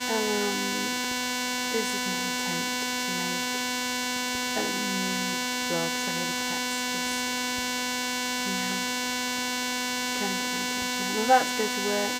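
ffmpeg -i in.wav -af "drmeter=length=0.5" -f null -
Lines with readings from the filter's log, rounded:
Channel 1: DR: 12.0
Overall DR: 12.0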